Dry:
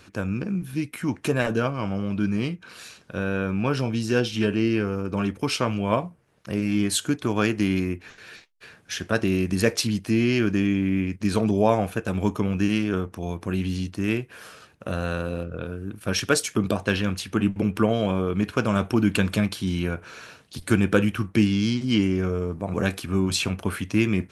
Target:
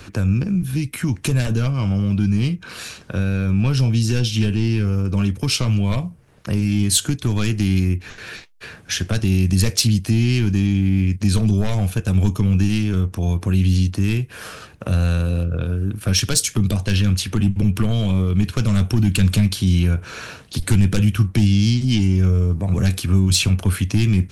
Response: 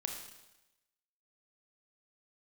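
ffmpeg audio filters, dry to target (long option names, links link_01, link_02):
-filter_complex "[0:a]aeval=exprs='0.631*(cos(1*acos(clip(val(0)/0.631,-1,1)))-cos(1*PI/2))+0.251*(cos(5*acos(clip(val(0)/0.631,-1,1)))-cos(5*PI/2))':channel_layout=same,acrossover=split=170|3000[link_01][link_02][link_03];[link_02]acompressor=threshold=-29dB:ratio=6[link_04];[link_01][link_04][link_03]amix=inputs=3:normalize=0,lowshelf=frequency=110:gain=10"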